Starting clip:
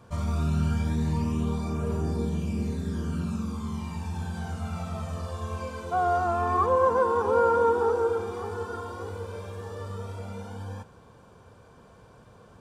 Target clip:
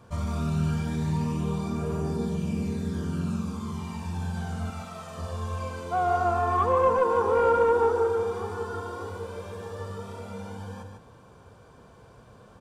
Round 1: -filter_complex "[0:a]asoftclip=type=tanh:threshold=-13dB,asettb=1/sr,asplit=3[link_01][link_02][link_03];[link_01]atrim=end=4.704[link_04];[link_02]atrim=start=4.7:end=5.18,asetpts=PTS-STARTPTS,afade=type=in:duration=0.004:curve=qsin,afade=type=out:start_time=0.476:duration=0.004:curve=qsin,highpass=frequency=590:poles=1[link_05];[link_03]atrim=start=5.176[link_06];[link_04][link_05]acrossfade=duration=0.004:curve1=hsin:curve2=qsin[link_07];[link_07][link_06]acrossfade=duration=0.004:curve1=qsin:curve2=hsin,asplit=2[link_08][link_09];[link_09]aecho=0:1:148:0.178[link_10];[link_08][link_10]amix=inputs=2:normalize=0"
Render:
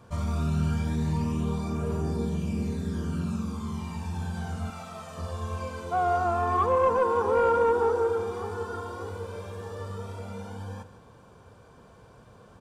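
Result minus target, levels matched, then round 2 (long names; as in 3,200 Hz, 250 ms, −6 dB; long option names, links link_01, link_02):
echo-to-direct −9 dB
-filter_complex "[0:a]asoftclip=type=tanh:threshold=-13dB,asettb=1/sr,asplit=3[link_01][link_02][link_03];[link_01]atrim=end=4.704[link_04];[link_02]atrim=start=4.7:end=5.18,asetpts=PTS-STARTPTS,afade=type=in:duration=0.004:curve=qsin,afade=type=out:start_time=0.476:duration=0.004:curve=qsin,highpass=frequency=590:poles=1[link_05];[link_03]atrim=start=5.176[link_06];[link_04][link_05]acrossfade=duration=0.004:curve1=hsin:curve2=qsin[link_07];[link_07][link_06]acrossfade=duration=0.004:curve1=qsin:curve2=hsin,asplit=2[link_08][link_09];[link_09]aecho=0:1:148:0.501[link_10];[link_08][link_10]amix=inputs=2:normalize=0"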